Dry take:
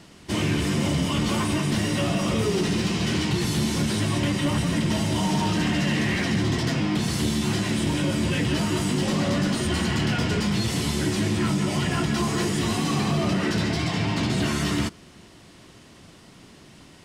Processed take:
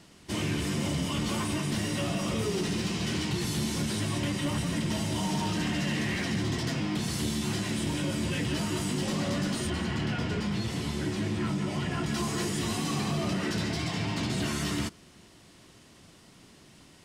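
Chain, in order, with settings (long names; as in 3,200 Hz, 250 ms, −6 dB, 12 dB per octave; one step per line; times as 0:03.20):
high-shelf EQ 5,200 Hz +4 dB, from 0:09.70 −7.5 dB, from 0:12.06 +5 dB
level −6.5 dB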